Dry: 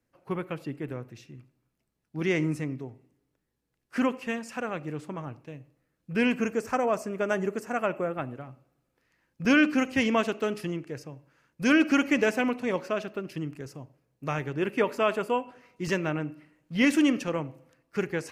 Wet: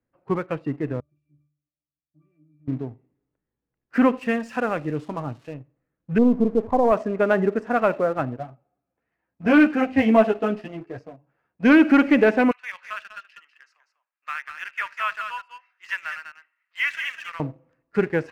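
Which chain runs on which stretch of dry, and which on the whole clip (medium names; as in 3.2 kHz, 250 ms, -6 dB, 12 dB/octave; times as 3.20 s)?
1.00–2.68 s: tone controls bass -2 dB, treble +13 dB + compression 4:1, threshold -44 dBFS + pitch-class resonator D, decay 0.37 s
4.17–5.54 s: zero-crossing glitches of -33.5 dBFS + treble shelf 4.4 kHz +8 dB
6.18–6.92 s: partial rectifier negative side -3 dB + brick-wall FIR low-pass 1.2 kHz + bass shelf 120 Hz +5.5 dB
8.38–11.65 s: high-pass 54 Hz 24 dB/octave + peaking EQ 710 Hz +11 dB 0.25 oct + three-phase chorus
12.51–17.40 s: high-pass 1.3 kHz 24 dB/octave + delay 196 ms -7.5 dB
whole clip: low-pass 1.9 kHz 12 dB/octave; spectral noise reduction 6 dB; waveshaping leveller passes 1; trim +5 dB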